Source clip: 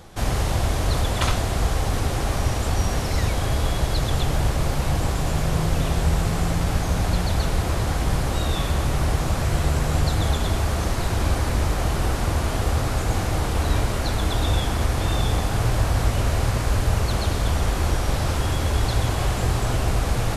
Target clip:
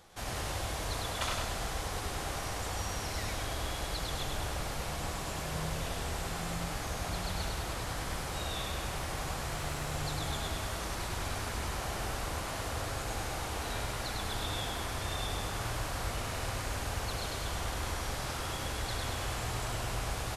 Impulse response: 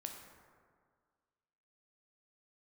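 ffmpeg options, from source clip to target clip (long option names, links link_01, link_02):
-filter_complex "[0:a]lowshelf=frequency=470:gain=-10,asettb=1/sr,asplit=3[link_01][link_02][link_03];[link_01]atrim=end=9.544[link_04];[link_02]atrim=start=9.54:end=9.99,asetpts=PTS-STARTPTS,afade=type=in:duration=0.004:curve=qsin,afade=type=out:start_time=0.446:duration=0.004:curve=qsin,aeval=exprs='sgn(val(0))*max(abs(val(0))-0.00251,0)':channel_layout=same[link_05];[link_03]atrim=start=9.986[link_06];[link_04][link_05]acrossfade=duration=0.004:curve1=hsin:curve2=qsin[link_07];[link_07][link_06]acrossfade=duration=0.004:curve1=qsin:curve2=hsin,aecho=1:1:101|202|303|404|505|606|707:0.631|0.341|0.184|0.0994|0.0537|0.029|0.0156,volume=-9dB"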